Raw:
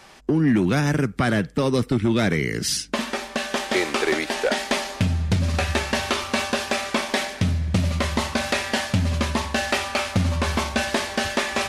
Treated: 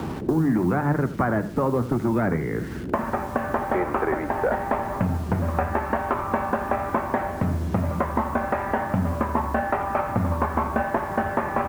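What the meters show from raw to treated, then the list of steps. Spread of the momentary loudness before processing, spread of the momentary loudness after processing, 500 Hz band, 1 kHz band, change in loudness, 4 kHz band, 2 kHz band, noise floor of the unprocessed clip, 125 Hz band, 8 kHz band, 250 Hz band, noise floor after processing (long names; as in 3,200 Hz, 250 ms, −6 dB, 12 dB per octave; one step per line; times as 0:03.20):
4 LU, 4 LU, 0.0 dB, +4.0 dB, −2.0 dB, −23.5 dB, −6.0 dB, −39 dBFS, −2.5 dB, −19.0 dB, −1.5 dB, −32 dBFS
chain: low-pass filter 1,600 Hz 24 dB per octave
parametric band 910 Hz +7.5 dB 1 octave
mains-hum notches 50/100/150/200 Hz
in parallel at −2 dB: output level in coarse steps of 11 dB
on the sum: flanger 1 Hz, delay 5.1 ms, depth 9.7 ms, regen +74%
slap from a distant wall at 26 metres, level −25 dB
bit reduction 8 bits
noise in a band 44–370 Hz −39 dBFS
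on a send: single-tap delay 82 ms −15.5 dB
on the sum: multiband upward and downward compressor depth 70%
level −2 dB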